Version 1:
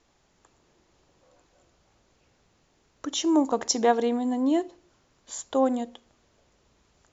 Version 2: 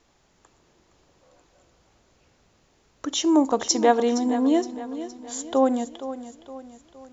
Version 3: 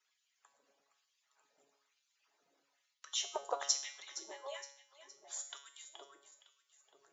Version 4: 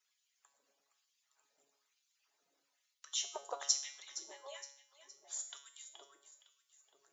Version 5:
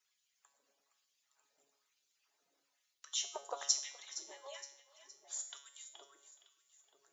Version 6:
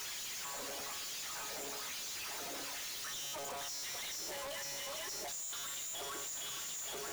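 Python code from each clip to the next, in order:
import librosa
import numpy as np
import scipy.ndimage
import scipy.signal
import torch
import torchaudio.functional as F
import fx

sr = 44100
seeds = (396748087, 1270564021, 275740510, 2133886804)

y1 = fx.echo_feedback(x, sr, ms=466, feedback_pct=46, wet_db=-13)
y1 = y1 * librosa.db_to_amplitude(3.0)
y2 = fx.hpss_only(y1, sr, part='percussive')
y2 = fx.filter_lfo_highpass(y2, sr, shape='sine', hz=1.1, low_hz=370.0, high_hz=2900.0, q=1.2)
y2 = fx.comb_fb(y2, sr, f0_hz=140.0, decay_s=0.6, harmonics='all', damping=0.0, mix_pct=80)
y2 = y2 * librosa.db_to_amplitude(1.5)
y3 = fx.high_shelf(y2, sr, hz=4000.0, db=9.0)
y3 = y3 * librosa.db_to_amplitude(-5.5)
y4 = fx.echo_feedback(y3, sr, ms=422, feedback_pct=38, wet_db=-22.0)
y5 = np.sign(y4) * np.sqrt(np.mean(np.square(y4)))
y5 = y5 * librosa.db_to_amplitude(5.0)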